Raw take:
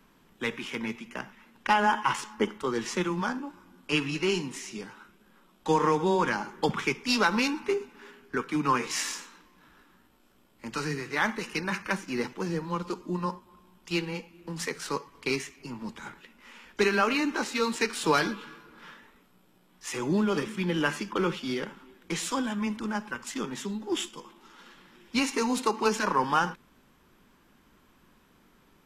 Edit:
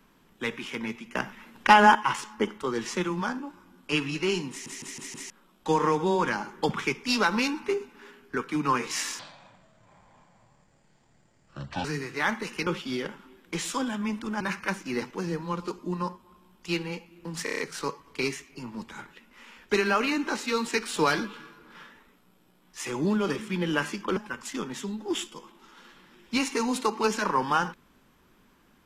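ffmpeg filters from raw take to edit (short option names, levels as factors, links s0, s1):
-filter_complex "[0:a]asplit=18[s0][s1][s2][s3][s4][s5][s6][s7][s8][s9][s10][s11][s12][s13][s14][s15][s16][s17];[s0]atrim=end=1.152[s18];[s1]atrim=start=1.148:end=1.952,asetpts=PTS-STARTPTS,volume=2.24[s19];[s2]atrim=start=1.948:end=4.662[s20];[s3]atrim=start=4.498:end=4.662[s21];[s4]atrim=start=4.498:end=4.662[s22];[s5]atrim=start=4.498:end=4.662[s23];[s6]atrim=start=4.498:end=4.662[s24];[s7]atrim=start=5.298:end=9.194[s25];[s8]atrim=start=9.19:end=10.81,asetpts=PTS-STARTPTS,asetrate=26901,aresample=44100,atrim=end_sample=117118,asetpts=PTS-STARTPTS[s26];[s9]atrim=start=10.806:end=11.632[s27];[s10]atrim=start=21.238:end=22.982[s28];[s11]atrim=start=11.628:end=14.692[s29];[s12]atrim=start=14.658:end=14.692[s30];[s13]atrim=start=14.658:end=14.692[s31];[s14]atrim=start=14.658:end=14.692[s32];[s15]atrim=start=14.658:end=14.692[s33];[s16]atrim=start=14.658:end=21.242[s34];[s17]atrim=start=22.978[s35];[s18][s19]acrossfade=d=0.004:c1=hsin:c2=hsin[s36];[s36][s20]acrossfade=d=0.004:c1=hsin:c2=hsin[s37];[s37][s21]acrossfade=d=0.004:c1=hsin:c2=hsin[s38];[s38][s22]acrossfade=d=0.004:c1=hsin:c2=hsin[s39];[s39][s23]acrossfade=d=0.004:c1=hsin:c2=hsin[s40];[s40][s24]acrossfade=d=0.004:c1=hsin:c2=hsin[s41];[s41][s25]acrossfade=d=0.004:c1=hsin:c2=hsin[s42];[s42][s26]acrossfade=d=0.004:c1=hsin:c2=hsin[s43];[s43][s27]acrossfade=d=0.004:c1=hsin:c2=hsin[s44];[s44][s28]acrossfade=d=0.004:c1=hsin:c2=hsin[s45];[s45][s29]acrossfade=d=0.004:c1=hsin:c2=hsin[s46];[s46][s30]acrossfade=d=0.004:c1=hsin:c2=hsin[s47];[s47][s31]acrossfade=d=0.004:c1=hsin:c2=hsin[s48];[s48][s32]acrossfade=d=0.004:c1=hsin:c2=hsin[s49];[s49][s33]acrossfade=d=0.004:c1=hsin:c2=hsin[s50];[s50][s34]acrossfade=d=0.004:c1=hsin:c2=hsin[s51];[s51][s35]acrossfade=d=0.004:c1=hsin:c2=hsin"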